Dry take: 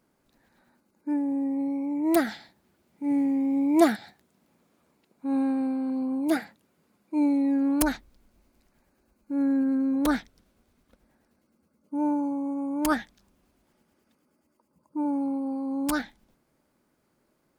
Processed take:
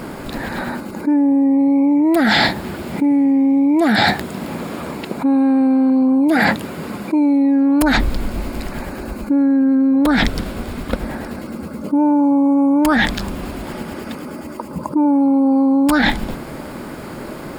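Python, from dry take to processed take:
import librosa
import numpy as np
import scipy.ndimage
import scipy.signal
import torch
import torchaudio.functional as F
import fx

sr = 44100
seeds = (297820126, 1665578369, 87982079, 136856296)

y = fx.high_shelf(x, sr, hz=4800.0, db=-8.5)
y = fx.notch(y, sr, hz=6000.0, q=6.2)
y = fx.env_flatten(y, sr, amount_pct=100)
y = y * 10.0 ** (1.0 / 20.0)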